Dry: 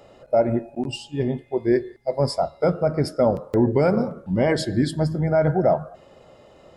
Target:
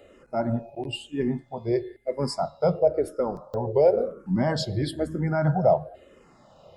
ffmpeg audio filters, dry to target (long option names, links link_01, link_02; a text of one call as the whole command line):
ffmpeg -i in.wav -filter_complex "[0:a]asettb=1/sr,asplit=3[link_01][link_02][link_03];[link_01]atrim=end=2.794[link_04];[link_02]atrim=start=2.79:end=4.2,asetpts=PTS-STARTPTS,afade=type=in:duration=0.004:curve=qsin,afade=type=out:start_time=1.406:duration=0.004:curve=qsin,equalizer=frequency=125:width_type=o:width=1:gain=-6,equalizer=frequency=250:width_type=o:width=1:gain=-10,equalizer=frequency=500:width_type=o:width=1:gain=6,equalizer=frequency=2000:width_type=o:width=1:gain=-11,equalizer=frequency=8000:width_type=o:width=1:gain=-6[link_05];[link_03]atrim=start=4.196[link_06];[link_04][link_05]acrossfade=duration=0.004:curve1=hsin:curve2=qsin[link_07];[link_07][link_06]acrossfade=duration=0.004:curve1=qsin:curve2=hsin,asplit=2[link_08][link_09];[link_09]afreqshift=-1[link_10];[link_08][link_10]amix=inputs=2:normalize=1" out.wav